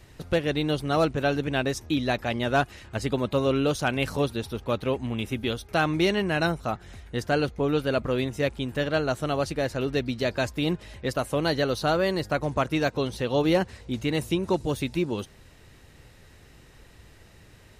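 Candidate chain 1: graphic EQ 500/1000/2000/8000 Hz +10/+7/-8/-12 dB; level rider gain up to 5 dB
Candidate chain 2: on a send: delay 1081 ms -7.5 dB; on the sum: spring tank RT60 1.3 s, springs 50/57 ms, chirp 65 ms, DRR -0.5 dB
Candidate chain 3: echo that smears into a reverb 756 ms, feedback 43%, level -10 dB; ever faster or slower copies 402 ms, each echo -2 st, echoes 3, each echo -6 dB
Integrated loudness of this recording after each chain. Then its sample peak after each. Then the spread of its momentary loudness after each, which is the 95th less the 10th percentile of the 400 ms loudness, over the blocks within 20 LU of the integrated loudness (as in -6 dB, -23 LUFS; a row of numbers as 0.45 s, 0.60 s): -17.0 LUFS, -23.0 LUFS, -25.5 LUFS; -2.0 dBFS, -7.5 dBFS, -9.5 dBFS; 8 LU, 6 LU, 6 LU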